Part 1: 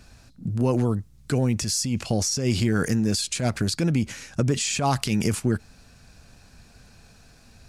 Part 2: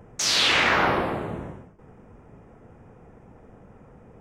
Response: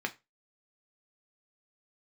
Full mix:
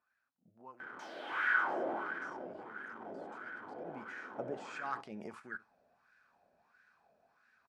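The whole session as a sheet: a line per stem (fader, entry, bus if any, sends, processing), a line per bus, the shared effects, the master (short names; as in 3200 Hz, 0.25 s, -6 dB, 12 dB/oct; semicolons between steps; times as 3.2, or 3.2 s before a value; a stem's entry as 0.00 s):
3.76 s -19.5 dB -> 4.01 s -7 dB, 0.00 s, send -8.5 dB, echo send -16.5 dB, dry
-13.0 dB, 0.80 s, send -5.5 dB, no echo send, compressor, threshold -25 dBFS, peak gain reduction 8 dB; power-law curve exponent 0.35; small resonant body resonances 300/1500/3100 Hz, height 12 dB, ringing for 25 ms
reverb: on, RT60 0.25 s, pre-delay 3 ms
echo: echo 71 ms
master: wah 1.5 Hz 600–1600 Hz, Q 4.3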